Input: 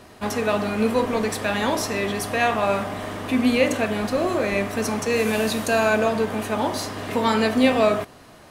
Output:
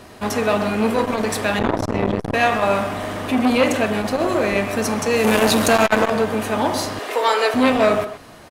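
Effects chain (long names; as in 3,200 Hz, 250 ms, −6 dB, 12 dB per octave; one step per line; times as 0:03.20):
0:01.59–0:02.34: spectral tilt −3.5 dB per octave
0:05.24–0:06.10: leveller curve on the samples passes 2
0:06.99–0:07.54: Butterworth high-pass 370 Hz 36 dB per octave
far-end echo of a speakerphone 130 ms, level −10 dB
saturating transformer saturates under 950 Hz
level +4.5 dB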